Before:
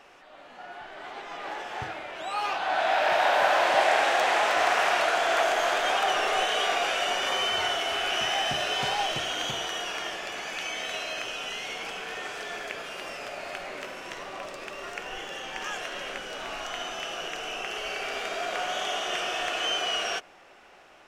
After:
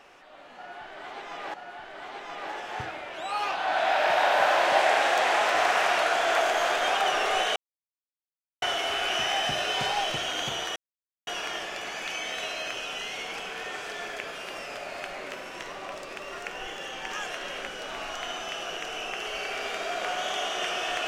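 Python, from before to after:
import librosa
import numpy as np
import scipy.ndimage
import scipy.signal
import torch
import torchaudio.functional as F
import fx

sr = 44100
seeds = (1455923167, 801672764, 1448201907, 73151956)

y = fx.edit(x, sr, fx.repeat(start_s=0.56, length_s=0.98, count=2),
    fx.silence(start_s=6.58, length_s=1.06),
    fx.insert_silence(at_s=9.78, length_s=0.51), tone=tone)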